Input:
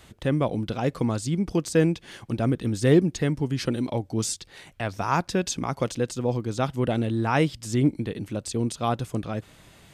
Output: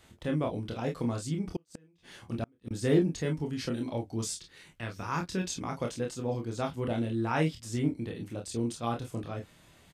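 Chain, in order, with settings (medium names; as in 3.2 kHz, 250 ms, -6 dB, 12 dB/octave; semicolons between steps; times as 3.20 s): 4.34–5.45 s: peaking EQ 710 Hz -9.5 dB 0.63 oct; early reflections 12 ms -17.5 dB, 26 ms -4 dB, 38 ms -9.5 dB, 49 ms -13 dB; 1.56–2.71 s: inverted gate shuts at -15 dBFS, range -35 dB; trim -8.5 dB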